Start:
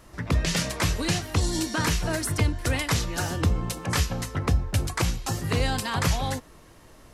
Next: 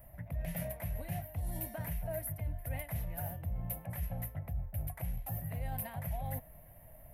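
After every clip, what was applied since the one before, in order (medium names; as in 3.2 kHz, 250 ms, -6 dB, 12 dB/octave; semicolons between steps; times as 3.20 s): FFT filter 150 Hz 0 dB, 400 Hz -21 dB, 640 Hz +4 dB, 1.2 kHz -19 dB, 2 kHz -7 dB, 4.6 kHz -27 dB, 7.3 kHz -25 dB, 13 kHz +14 dB; reverse; compression 6:1, threshold -33 dBFS, peak gain reduction 15 dB; reverse; trim -2 dB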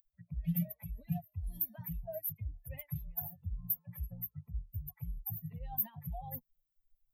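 expander on every frequency bin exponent 3; FFT filter 120 Hz 0 dB, 170 Hz +12 dB, 330 Hz -13 dB, 750 Hz +1 dB, 1.3 kHz -11 dB, 2.1 kHz -6 dB, 3.2 kHz -2 dB, 8.8 kHz -21 dB, 13 kHz +12 dB; trim +2.5 dB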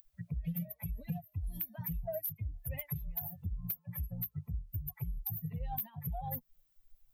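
compression 6:1, threshold -46 dBFS, peak gain reduction 17.5 dB; saturation -36.5 dBFS, distortion -23 dB; trim +11.5 dB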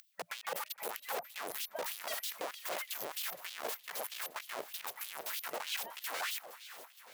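integer overflow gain 39 dB; echo whose repeats swap between lows and highs 233 ms, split 1.1 kHz, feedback 80%, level -12 dB; LFO high-pass sine 3.2 Hz 500–3500 Hz; trim +4.5 dB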